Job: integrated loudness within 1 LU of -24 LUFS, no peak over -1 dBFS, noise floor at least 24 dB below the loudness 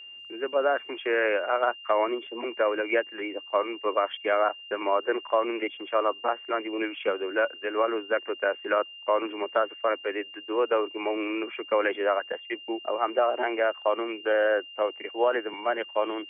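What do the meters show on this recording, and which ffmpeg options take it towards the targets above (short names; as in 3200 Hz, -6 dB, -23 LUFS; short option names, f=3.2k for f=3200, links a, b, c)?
steady tone 2800 Hz; tone level -42 dBFS; loudness -27.5 LUFS; peak -11.5 dBFS; loudness target -24.0 LUFS
-> -af "bandreject=f=2.8k:w=30"
-af "volume=3.5dB"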